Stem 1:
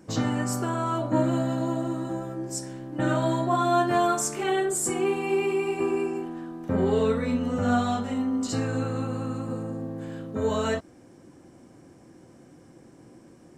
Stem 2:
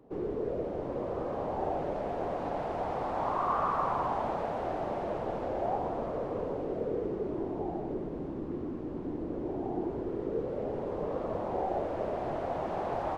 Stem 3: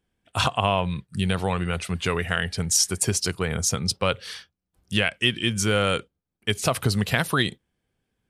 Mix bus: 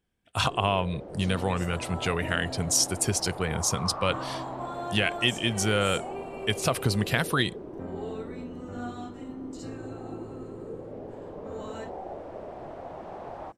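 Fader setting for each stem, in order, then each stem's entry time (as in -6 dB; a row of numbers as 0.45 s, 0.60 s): -14.0 dB, -6.5 dB, -3.0 dB; 1.10 s, 0.35 s, 0.00 s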